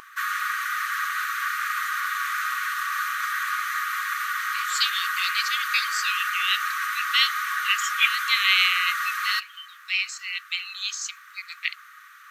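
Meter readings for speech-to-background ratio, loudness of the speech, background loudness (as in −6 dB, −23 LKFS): 1.5 dB, −25.0 LKFS, −26.5 LKFS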